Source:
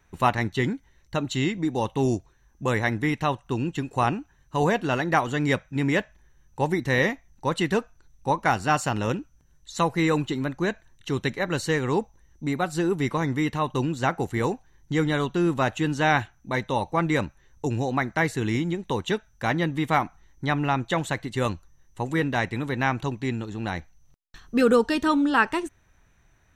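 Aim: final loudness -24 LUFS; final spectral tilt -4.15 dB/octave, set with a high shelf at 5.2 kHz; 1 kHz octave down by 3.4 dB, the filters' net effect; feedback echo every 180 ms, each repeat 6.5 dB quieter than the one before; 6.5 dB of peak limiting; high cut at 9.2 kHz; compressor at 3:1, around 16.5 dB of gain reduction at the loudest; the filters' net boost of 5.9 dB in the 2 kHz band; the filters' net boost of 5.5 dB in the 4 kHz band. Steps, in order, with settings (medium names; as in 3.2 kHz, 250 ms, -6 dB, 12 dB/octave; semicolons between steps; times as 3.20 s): low-pass 9.2 kHz; peaking EQ 1 kHz -7 dB; peaking EQ 2 kHz +8.5 dB; peaking EQ 4 kHz +5.5 dB; treble shelf 5.2 kHz -3.5 dB; compression 3:1, threshold -38 dBFS; peak limiter -27.5 dBFS; feedback delay 180 ms, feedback 47%, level -6.5 dB; trim +14.5 dB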